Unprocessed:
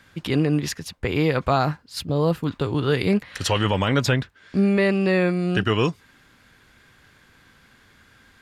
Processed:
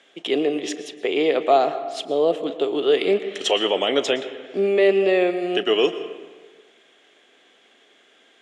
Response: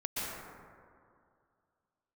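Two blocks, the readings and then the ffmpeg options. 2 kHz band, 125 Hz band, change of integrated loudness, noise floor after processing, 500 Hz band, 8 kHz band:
−1.5 dB, below −20 dB, +1.5 dB, −57 dBFS, +5.5 dB, −2.0 dB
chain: -filter_complex "[0:a]highpass=frequency=300:width=0.5412,highpass=frequency=300:width=1.3066,equalizer=frequency=410:width_type=q:width=4:gain=7,equalizer=frequency=680:width_type=q:width=4:gain=9,equalizer=frequency=980:width_type=q:width=4:gain=-8,equalizer=frequency=1500:width_type=q:width=4:gain=-9,equalizer=frequency=3200:width_type=q:width=4:gain=9,equalizer=frequency=4600:width_type=q:width=4:gain=-10,lowpass=frequency=8200:width=0.5412,lowpass=frequency=8200:width=1.3066,asplit=2[link_01][link_02];[1:a]atrim=start_sample=2205,asetrate=70560,aresample=44100,adelay=36[link_03];[link_02][link_03]afir=irnorm=-1:irlink=0,volume=-12.5dB[link_04];[link_01][link_04]amix=inputs=2:normalize=0"

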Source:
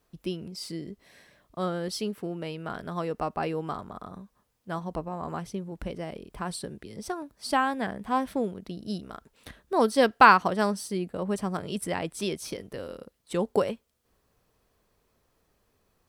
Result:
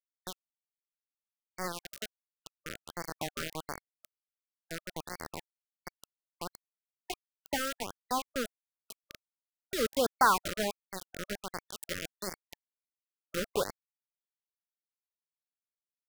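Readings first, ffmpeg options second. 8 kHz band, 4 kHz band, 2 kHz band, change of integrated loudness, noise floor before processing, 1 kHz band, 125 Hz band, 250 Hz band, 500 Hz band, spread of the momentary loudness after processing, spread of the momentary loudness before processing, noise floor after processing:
0.0 dB, −2.5 dB, −8.0 dB, −7.0 dB, −72 dBFS, −8.5 dB, −13.0 dB, −12.0 dB, −8.5 dB, 21 LU, 16 LU, below −85 dBFS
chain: -af "aeval=exprs='val(0)+0.5*0.0335*sgn(val(0))':channel_layout=same,highpass=frequency=300:poles=1,asoftclip=type=tanh:threshold=-6.5dB,acrusher=bits=3:mix=0:aa=0.000001,afftfilt=real='re*(1-between(b*sr/1024,840*pow(3200/840,0.5+0.5*sin(2*PI*1.4*pts/sr))/1.41,840*pow(3200/840,0.5+0.5*sin(2*PI*1.4*pts/sr))*1.41))':imag='im*(1-between(b*sr/1024,840*pow(3200/840,0.5+0.5*sin(2*PI*1.4*pts/sr))/1.41,840*pow(3200/840,0.5+0.5*sin(2*PI*1.4*pts/sr))*1.41))':win_size=1024:overlap=0.75,volume=-7dB"

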